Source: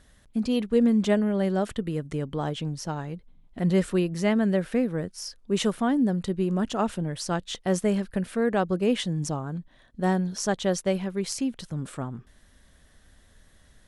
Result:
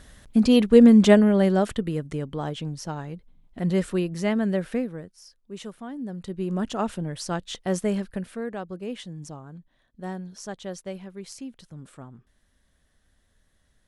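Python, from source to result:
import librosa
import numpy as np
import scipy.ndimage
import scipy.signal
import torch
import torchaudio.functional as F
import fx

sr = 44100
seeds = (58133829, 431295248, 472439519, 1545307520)

y = fx.gain(x, sr, db=fx.line((1.07, 8.0), (2.3, -1.0), (4.74, -1.0), (5.17, -13.0), (5.91, -13.0), (6.55, -1.0), (8.02, -1.0), (8.6, -10.0)))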